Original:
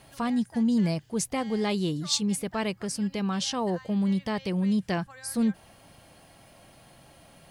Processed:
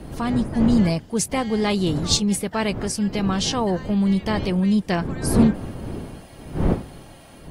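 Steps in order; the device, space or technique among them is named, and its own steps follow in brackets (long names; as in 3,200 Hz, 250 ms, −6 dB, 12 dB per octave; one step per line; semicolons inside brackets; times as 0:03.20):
smartphone video outdoors (wind on the microphone 260 Hz −34 dBFS; automatic gain control gain up to 3 dB; level +3 dB; AAC 48 kbit/s 48,000 Hz)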